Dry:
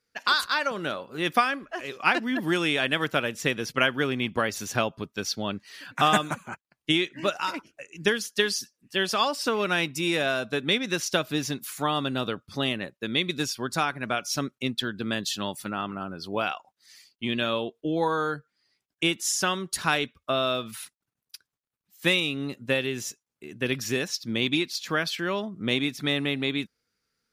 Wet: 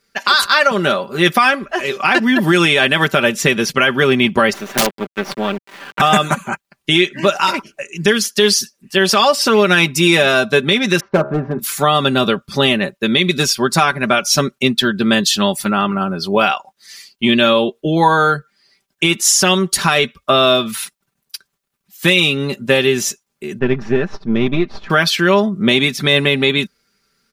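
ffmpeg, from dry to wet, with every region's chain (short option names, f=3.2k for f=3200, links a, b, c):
-filter_complex "[0:a]asettb=1/sr,asplit=3[a][b][c];[a]atrim=end=4.534[d];[b]atrim=start=4.53:end=6,asetpts=PTS-STARTPTS,afade=t=in:d=0.004:c=qsin,afade=t=out:st=1.466:d=0.004:c=qsin,acrusher=bits=4:dc=4:mix=0:aa=0.000001,acrossover=split=160 3100:gain=0.0631 1 0.141[e][f][g];[e][f][g]amix=inputs=3:normalize=0,aeval=exprs='(mod(9.44*val(0)+1,2)-1)/9.44':c=same[h];[c]atrim=start=5.996[i];[d][h]acrossfade=d=0.004:c1=hsin:c2=qsin[j];[j][i]acrossfade=d=0.004:c1=qsin:c2=hsin,asettb=1/sr,asplit=3[k][l][m];[k]atrim=end=11.004[n];[l]atrim=start=11:end=11.59,asetpts=PTS-STARTPTS,afade=t=in:d=0.004:c=qsin,afade=t=out:st=0.586:d=0.004:c=qsin,lowpass=f=1.3k:w=0.5412,lowpass=f=1.3k:w=1.3066,volume=21.5dB,asoftclip=hard,volume=-21.5dB,bandreject=f=70.33:t=h:w=4,bandreject=f=140.66:t=h:w=4,bandreject=f=210.99:t=h:w=4,bandreject=f=281.32:t=h:w=4,bandreject=f=351.65:t=h:w=4,bandreject=f=421.98:t=h:w=4,bandreject=f=492.31:t=h:w=4,bandreject=f=562.64:t=h:w=4,bandreject=f=632.97:t=h:w=4,bandreject=f=703.3:t=h:w=4,bandreject=f=773.63:t=h:w=4,bandreject=f=843.96:t=h:w=4,bandreject=f=914.29:t=h:w=4,bandreject=f=984.62:t=h:w=4,bandreject=f=1.05495k:t=h:w=4,bandreject=f=1.12528k:t=h:w=4,bandreject=f=1.19561k:t=h:w=4,bandreject=f=1.26594k:t=h:w=4,bandreject=f=1.33627k:t=h:w=4,bandreject=f=1.4066k:t=h:w=4,bandreject=f=1.47693k:t=h:w=4,bandreject=f=1.54726k:t=h:w=4,bandreject=f=1.61759k:t=h:w=4,bandreject=f=1.68792k:t=h:w=4,bandreject=f=1.75825k:t=h:w=4[o];[m]atrim=start=11.586[p];[n][o]acrossfade=d=0.004:c1=hsin:c2=qsin[q];[q][p]acrossfade=d=0.004:c1=qsin:c2=hsin,asettb=1/sr,asplit=3[r][s][t];[r]atrim=end=23.594[u];[s]atrim=start=23.59:end=24.9,asetpts=PTS-STARTPTS,afade=t=in:d=0.004:c=qsin,afade=t=out:st=1.306:d=0.004:c=qsin,aeval=exprs='if(lt(val(0),0),0.447*val(0),val(0))':c=same,lowpass=1.4k,equalizer=f=560:w=8:g=-6[v];[t]atrim=start=24.896[w];[u][v]acrossfade=d=0.004:c1=hsin:c2=qsin[x];[x][w]acrossfade=d=0.004:c1=qsin:c2=hsin,aecho=1:1:5.1:0.61,alimiter=level_in=14.5dB:limit=-1dB:release=50:level=0:latency=1,volume=-1dB"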